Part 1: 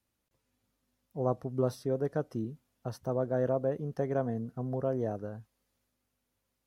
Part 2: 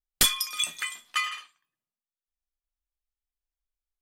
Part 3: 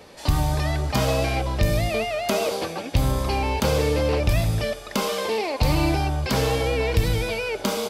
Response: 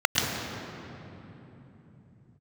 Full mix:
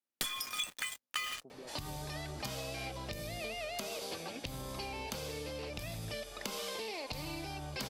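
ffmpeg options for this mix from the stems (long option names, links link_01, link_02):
-filter_complex "[0:a]highpass=250,alimiter=level_in=5dB:limit=-24dB:level=0:latency=1,volume=-5dB,volume=-13dB[link_01];[1:a]alimiter=limit=-16.5dB:level=0:latency=1:release=132,acrusher=bits=5:mix=0:aa=0.5,volume=1.5dB[link_02];[2:a]acompressor=threshold=-24dB:ratio=6,adelay=1500,volume=-6dB[link_03];[link_01][link_02][link_03]amix=inputs=3:normalize=0,equalizer=frequency=71:width=1.8:gain=-9,acrossover=split=95|2400[link_04][link_05][link_06];[link_04]acompressor=threshold=-50dB:ratio=4[link_07];[link_05]acompressor=threshold=-42dB:ratio=4[link_08];[link_06]acompressor=threshold=-38dB:ratio=4[link_09];[link_07][link_08][link_09]amix=inputs=3:normalize=0"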